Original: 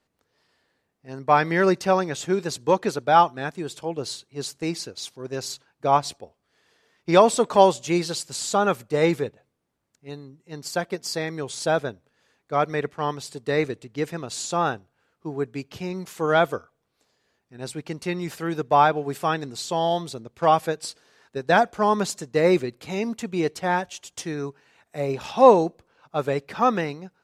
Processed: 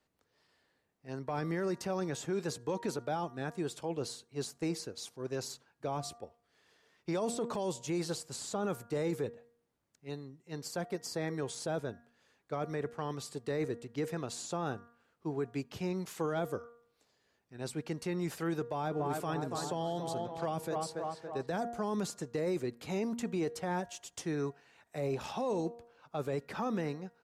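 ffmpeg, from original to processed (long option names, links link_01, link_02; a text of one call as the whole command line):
ffmpeg -i in.wav -filter_complex "[0:a]asplit=3[link_01][link_02][link_03];[link_01]afade=type=out:start_time=18.96:duration=0.02[link_04];[link_02]asplit=2[link_05][link_06];[link_06]adelay=281,lowpass=frequency=2000:poles=1,volume=-9dB,asplit=2[link_07][link_08];[link_08]adelay=281,lowpass=frequency=2000:poles=1,volume=0.54,asplit=2[link_09][link_10];[link_10]adelay=281,lowpass=frequency=2000:poles=1,volume=0.54,asplit=2[link_11][link_12];[link_12]adelay=281,lowpass=frequency=2000:poles=1,volume=0.54,asplit=2[link_13][link_14];[link_14]adelay=281,lowpass=frequency=2000:poles=1,volume=0.54,asplit=2[link_15][link_16];[link_16]adelay=281,lowpass=frequency=2000:poles=1,volume=0.54[link_17];[link_05][link_07][link_09][link_11][link_13][link_15][link_17]amix=inputs=7:normalize=0,afade=type=in:start_time=18.96:duration=0.02,afade=type=out:start_time=21.46:duration=0.02[link_18];[link_03]afade=type=in:start_time=21.46:duration=0.02[link_19];[link_04][link_18][link_19]amix=inputs=3:normalize=0,bandreject=frequency=235.9:width_type=h:width=4,bandreject=frequency=471.8:width_type=h:width=4,bandreject=frequency=707.7:width_type=h:width=4,bandreject=frequency=943.6:width_type=h:width=4,bandreject=frequency=1179.5:width_type=h:width=4,bandreject=frequency=1415.4:width_type=h:width=4,bandreject=frequency=1651.3:width_type=h:width=4,bandreject=frequency=1887.2:width_type=h:width=4,acrossover=split=470|1700|5700[link_20][link_21][link_22][link_23];[link_20]acompressor=threshold=-24dB:ratio=4[link_24];[link_21]acompressor=threshold=-31dB:ratio=4[link_25];[link_22]acompressor=threshold=-46dB:ratio=4[link_26];[link_23]acompressor=threshold=-40dB:ratio=4[link_27];[link_24][link_25][link_26][link_27]amix=inputs=4:normalize=0,alimiter=limit=-21.5dB:level=0:latency=1:release=12,volume=-4.5dB" out.wav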